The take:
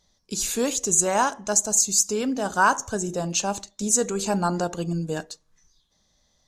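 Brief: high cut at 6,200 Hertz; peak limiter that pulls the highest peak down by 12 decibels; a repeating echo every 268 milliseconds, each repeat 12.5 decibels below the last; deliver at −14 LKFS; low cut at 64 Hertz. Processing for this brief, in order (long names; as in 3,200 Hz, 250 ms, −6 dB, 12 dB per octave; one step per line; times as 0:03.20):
high-pass filter 64 Hz
low-pass filter 6,200 Hz
brickwall limiter −18.5 dBFS
repeating echo 268 ms, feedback 24%, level −12.5 dB
level +14.5 dB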